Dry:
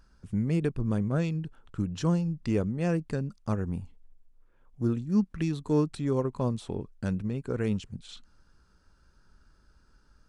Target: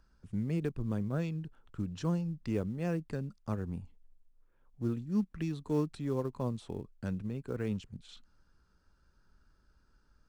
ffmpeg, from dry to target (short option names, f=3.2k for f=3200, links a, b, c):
-filter_complex "[0:a]acrossover=split=270|4100[a][b][c];[b]acrusher=bits=6:mode=log:mix=0:aa=0.000001[d];[a][d][c]amix=inputs=3:normalize=0,highshelf=f=7.2k:g=-5.5,volume=-6dB"